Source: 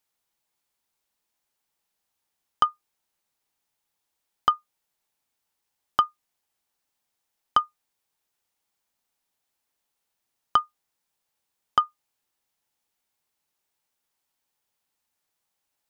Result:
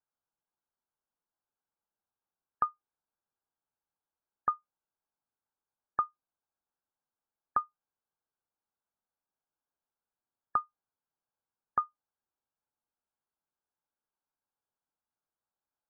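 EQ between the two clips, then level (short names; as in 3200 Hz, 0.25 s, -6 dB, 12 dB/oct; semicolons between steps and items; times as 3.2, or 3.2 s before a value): brick-wall FIR low-pass 1700 Hz; -8.5 dB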